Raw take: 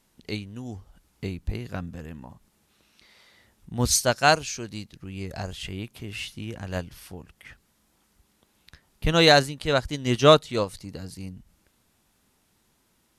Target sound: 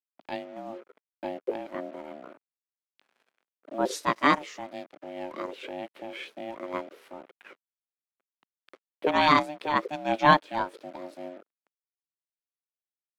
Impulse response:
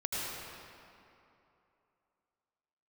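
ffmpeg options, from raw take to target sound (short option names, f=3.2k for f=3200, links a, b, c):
-filter_complex "[0:a]aeval=exprs='val(0)*sin(2*PI*450*n/s)':c=same,acrusher=bits=7:mix=0:aa=0.5,acrossover=split=210 2900:gain=0.0708 1 0.141[a][b][c];[a][b][c]amix=inputs=3:normalize=0,volume=1.5dB"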